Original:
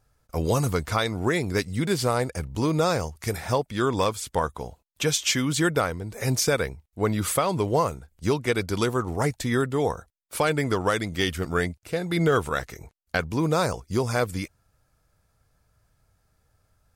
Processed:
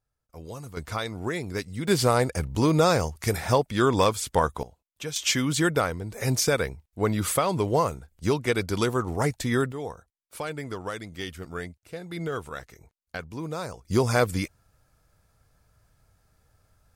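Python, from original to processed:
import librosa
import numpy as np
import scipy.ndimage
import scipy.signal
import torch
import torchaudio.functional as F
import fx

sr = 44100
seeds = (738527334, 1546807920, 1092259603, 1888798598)

y = fx.gain(x, sr, db=fx.steps((0.0, -16.0), (0.77, -6.0), (1.88, 2.5), (4.63, -10.0), (5.16, -0.5), (9.72, -10.0), (13.85, 2.5)))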